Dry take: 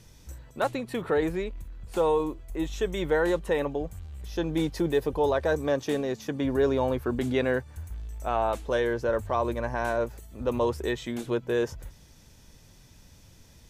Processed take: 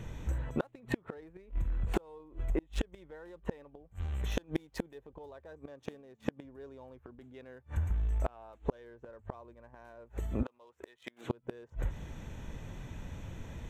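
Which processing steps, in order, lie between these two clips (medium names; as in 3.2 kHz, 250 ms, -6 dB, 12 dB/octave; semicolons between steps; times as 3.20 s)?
local Wiener filter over 9 samples; 3.95–4.95 s: tilt EQ +1.5 dB/octave; inverted gate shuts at -23 dBFS, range -36 dB; compression 5:1, threshold -39 dBFS, peak gain reduction 9.5 dB; 10.43–11.30 s: high-pass 1.2 kHz 6 dB/octave; trim +11 dB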